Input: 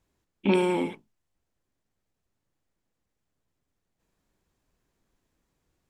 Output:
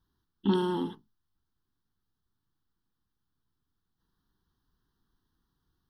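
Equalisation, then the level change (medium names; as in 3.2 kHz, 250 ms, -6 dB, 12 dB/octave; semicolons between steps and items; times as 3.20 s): Butterworth band-stop 2.4 kHz, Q 2.5; static phaser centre 2.2 kHz, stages 6; 0.0 dB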